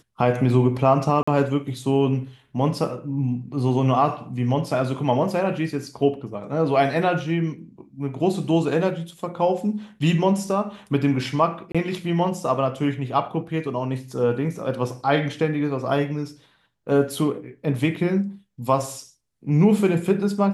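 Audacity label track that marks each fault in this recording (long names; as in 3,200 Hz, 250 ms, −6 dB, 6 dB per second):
1.230000	1.270000	drop-out 45 ms
11.720000	11.750000	drop-out 26 ms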